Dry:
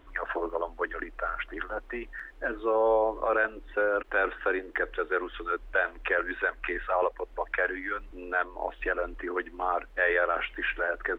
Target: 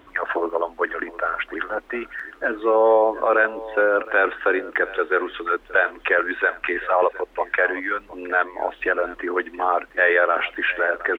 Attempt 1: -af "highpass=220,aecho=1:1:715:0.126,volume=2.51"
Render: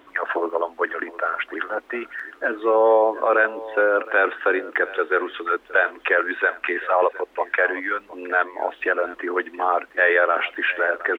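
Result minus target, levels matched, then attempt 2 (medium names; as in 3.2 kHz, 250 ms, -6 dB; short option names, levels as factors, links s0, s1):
125 Hz band -7.0 dB
-af "highpass=97,aecho=1:1:715:0.126,volume=2.51"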